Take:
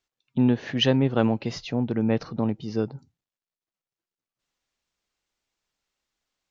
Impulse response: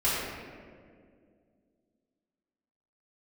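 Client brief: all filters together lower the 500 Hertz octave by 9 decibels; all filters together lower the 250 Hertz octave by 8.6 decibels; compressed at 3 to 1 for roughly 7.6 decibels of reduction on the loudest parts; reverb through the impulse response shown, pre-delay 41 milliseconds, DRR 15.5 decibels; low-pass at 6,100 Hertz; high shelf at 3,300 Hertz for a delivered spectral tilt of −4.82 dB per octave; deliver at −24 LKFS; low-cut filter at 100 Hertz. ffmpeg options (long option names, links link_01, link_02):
-filter_complex "[0:a]highpass=100,lowpass=6100,equalizer=frequency=250:width_type=o:gain=-7.5,equalizer=frequency=500:width_type=o:gain=-8.5,highshelf=frequency=3300:gain=-4.5,acompressor=threshold=-32dB:ratio=3,asplit=2[link_01][link_02];[1:a]atrim=start_sample=2205,adelay=41[link_03];[link_02][link_03]afir=irnorm=-1:irlink=0,volume=-28dB[link_04];[link_01][link_04]amix=inputs=2:normalize=0,volume=12.5dB"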